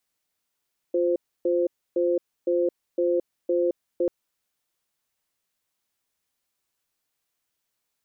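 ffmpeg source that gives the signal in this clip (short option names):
-f lavfi -i "aevalsrc='0.075*(sin(2*PI*351*t)+sin(2*PI*520*t))*clip(min(mod(t,0.51),0.22-mod(t,0.51))/0.005,0,1)':d=3.14:s=44100"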